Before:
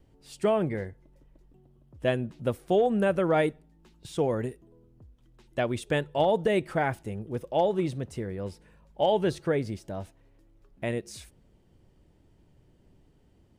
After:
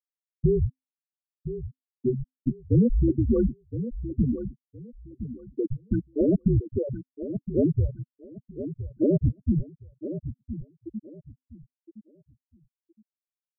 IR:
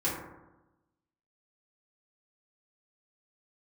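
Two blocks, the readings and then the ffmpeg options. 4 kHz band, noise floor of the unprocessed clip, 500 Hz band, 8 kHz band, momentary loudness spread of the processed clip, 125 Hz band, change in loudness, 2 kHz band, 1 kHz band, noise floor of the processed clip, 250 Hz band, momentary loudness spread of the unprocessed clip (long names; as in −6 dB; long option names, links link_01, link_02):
below −40 dB, −62 dBFS, −3.5 dB, below −30 dB, 18 LU, +8.0 dB, +1.5 dB, below −25 dB, below −30 dB, below −85 dBFS, +6.0 dB, 13 LU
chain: -filter_complex "[0:a]afftfilt=real='re*gte(hypot(re,im),0.282)':imag='im*gte(hypot(re,im),0.282)':win_size=1024:overlap=0.75,afreqshift=-260,tiltshelf=frequency=1100:gain=9.5,asplit=2[link_01][link_02];[link_02]aecho=0:1:1016|2032|3048:0.266|0.0612|0.0141[link_03];[link_01][link_03]amix=inputs=2:normalize=0,volume=-4.5dB"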